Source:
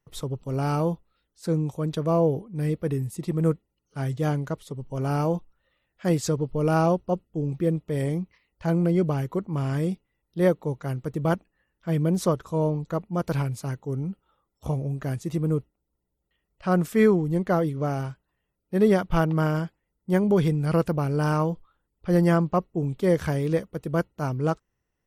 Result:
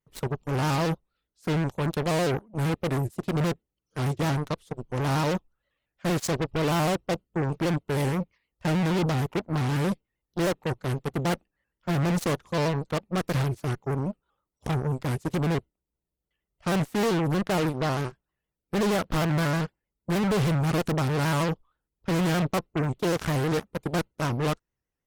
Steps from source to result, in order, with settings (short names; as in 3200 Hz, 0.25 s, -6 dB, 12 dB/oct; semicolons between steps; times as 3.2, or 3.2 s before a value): overloaded stage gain 19.5 dB; added harmonics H 5 -16 dB, 7 -10 dB, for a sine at -19 dBFS; shaped vibrato square 6.4 Hz, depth 100 cents